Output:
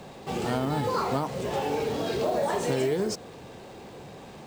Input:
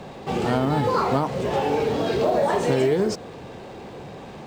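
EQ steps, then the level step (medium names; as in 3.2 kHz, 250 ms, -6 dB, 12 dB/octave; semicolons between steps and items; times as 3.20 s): treble shelf 6 kHz +11 dB; -6.0 dB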